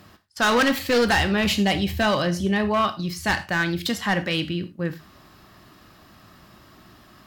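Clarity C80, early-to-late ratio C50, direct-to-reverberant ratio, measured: 20.5 dB, 15.5 dB, 10.5 dB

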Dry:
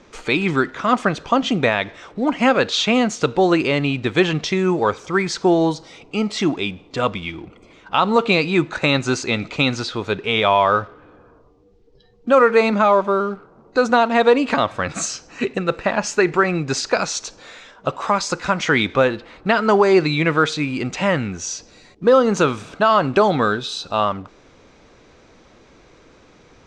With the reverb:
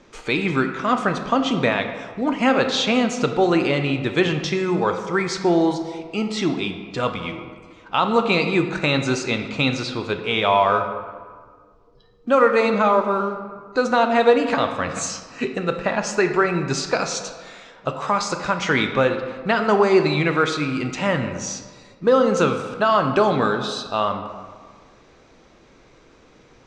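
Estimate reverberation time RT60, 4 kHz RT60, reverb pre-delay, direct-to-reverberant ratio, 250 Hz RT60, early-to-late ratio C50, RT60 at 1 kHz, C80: 1.6 s, 0.95 s, 5 ms, 6.0 dB, 1.5 s, 8.0 dB, 1.7 s, 9.5 dB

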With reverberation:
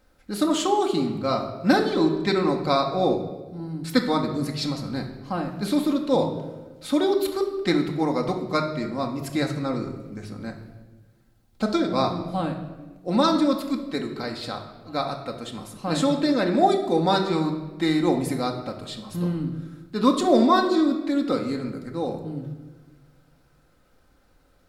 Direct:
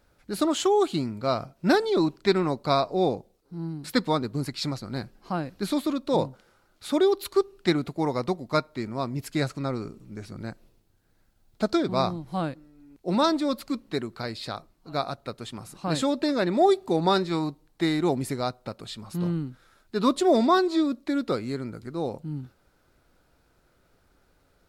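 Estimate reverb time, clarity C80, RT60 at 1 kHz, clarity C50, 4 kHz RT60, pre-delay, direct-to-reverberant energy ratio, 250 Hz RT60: 1.3 s, 10.5 dB, 1.1 s, 8.0 dB, 0.90 s, 4 ms, 1.5 dB, 1.7 s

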